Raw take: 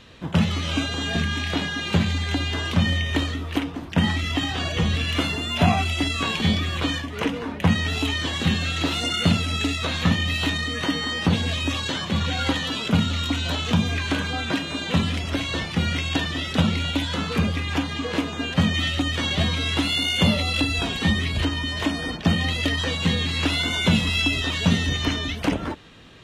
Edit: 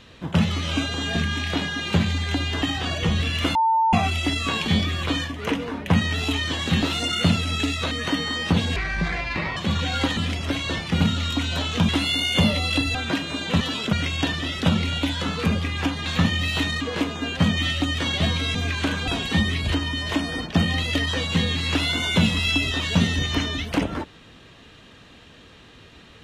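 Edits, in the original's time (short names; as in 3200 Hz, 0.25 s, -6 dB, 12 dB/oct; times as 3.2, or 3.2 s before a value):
2.62–4.36 cut
5.29–5.67 bleep 897 Hz -16 dBFS
8.56–8.83 cut
9.92–10.67 move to 17.98
11.52–12.02 speed 62%
12.62–12.94 swap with 15.01–15.85
13.82–14.35 swap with 19.72–20.78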